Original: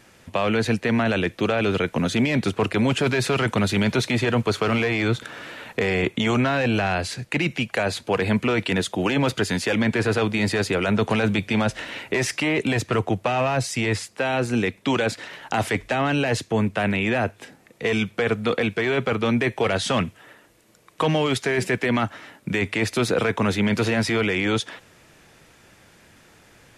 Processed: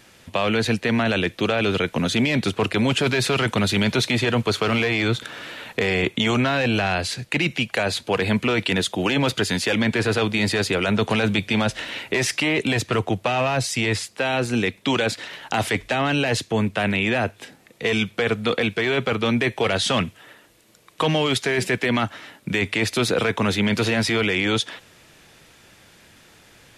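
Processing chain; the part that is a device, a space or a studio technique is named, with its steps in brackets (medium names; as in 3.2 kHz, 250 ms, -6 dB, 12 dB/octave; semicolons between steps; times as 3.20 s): presence and air boost (peaking EQ 3.6 kHz +5 dB 1.1 oct; treble shelf 9.8 kHz +5.5 dB)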